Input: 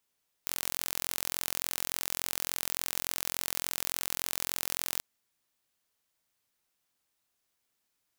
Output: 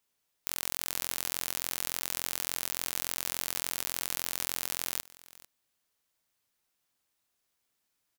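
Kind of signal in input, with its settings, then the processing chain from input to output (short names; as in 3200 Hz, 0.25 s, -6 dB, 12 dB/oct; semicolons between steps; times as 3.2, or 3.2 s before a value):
pulse train 43.5/s, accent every 0, -5 dBFS 4.54 s
echo 0.446 s -20.5 dB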